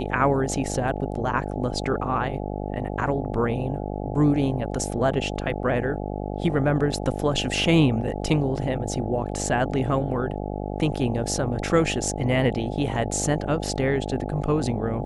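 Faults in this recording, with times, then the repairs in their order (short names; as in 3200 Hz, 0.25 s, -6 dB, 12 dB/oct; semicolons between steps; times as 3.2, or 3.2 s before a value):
buzz 50 Hz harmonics 17 -30 dBFS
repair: de-hum 50 Hz, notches 17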